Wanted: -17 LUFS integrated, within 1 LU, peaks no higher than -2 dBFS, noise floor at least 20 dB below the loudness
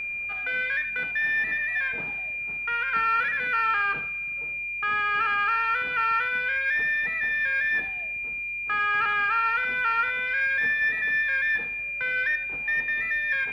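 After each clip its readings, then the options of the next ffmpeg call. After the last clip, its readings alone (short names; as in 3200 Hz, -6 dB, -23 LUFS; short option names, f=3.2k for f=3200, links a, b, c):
steady tone 2400 Hz; tone level -29 dBFS; loudness -24.5 LUFS; peak -15.0 dBFS; loudness target -17.0 LUFS
-> -af "bandreject=f=2.4k:w=30"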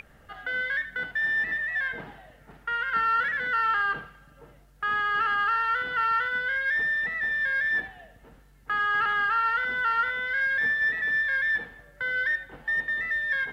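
steady tone none; loudness -25.5 LUFS; peak -16.0 dBFS; loudness target -17.0 LUFS
-> -af "volume=8.5dB"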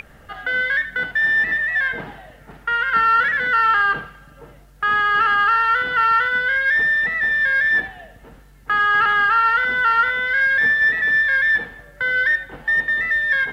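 loudness -17.0 LUFS; peak -7.5 dBFS; noise floor -47 dBFS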